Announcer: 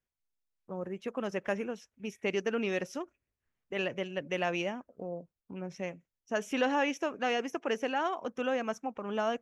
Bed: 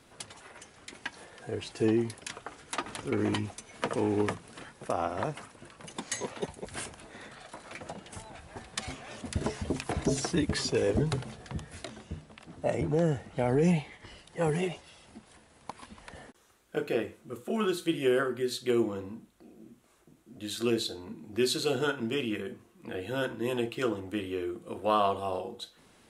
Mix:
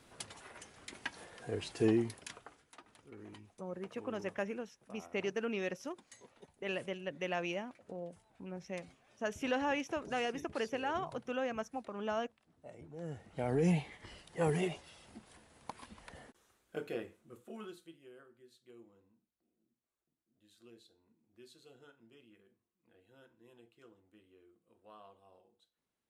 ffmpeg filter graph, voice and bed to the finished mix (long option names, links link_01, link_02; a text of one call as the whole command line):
ffmpeg -i stem1.wav -i stem2.wav -filter_complex "[0:a]adelay=2900,volume=-5dB[link_01];[1:a]volume=16.5dB,afade=type=out:start_time=1.9:duration=0.81:silence=0.1,afade=type=in:start_time=12.94:duration=0.89:silence=0.105925,afade=type=out:start_time=15.59:duration=2.39:silence=0.0446684[link_02];[link_01][link_02]amix=inputs=2:normalize=0" out.wav